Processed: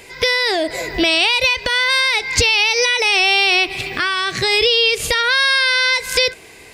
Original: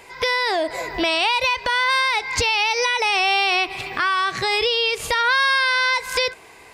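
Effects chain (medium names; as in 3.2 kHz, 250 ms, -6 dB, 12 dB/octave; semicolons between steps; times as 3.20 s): peaking EQ 1 kHz -11.5 dB 1.2 oct; trim +7.5 dB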